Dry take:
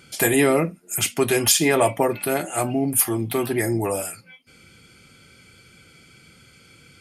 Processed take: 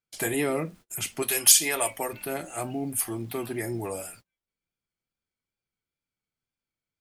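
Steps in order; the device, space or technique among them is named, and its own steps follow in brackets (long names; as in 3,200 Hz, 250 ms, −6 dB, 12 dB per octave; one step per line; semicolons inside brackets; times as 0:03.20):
0:01.22–0:02.13: spectral tilt +3.5 dB per octave
vinyl LP (tape wow and flutter; surface crackle; pink noise bed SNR 31 dB)
noise gate −39 dBFS, range −35 dB
level −9 dB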